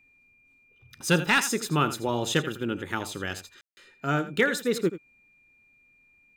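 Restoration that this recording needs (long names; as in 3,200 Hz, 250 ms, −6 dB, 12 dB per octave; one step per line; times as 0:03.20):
clipped peaks rebuilt −12 dBFS
notch filter 2,400 Hz, Q 30
ambience match 0:03.61–0:03.77
echo removal 83 ms −13.5 dB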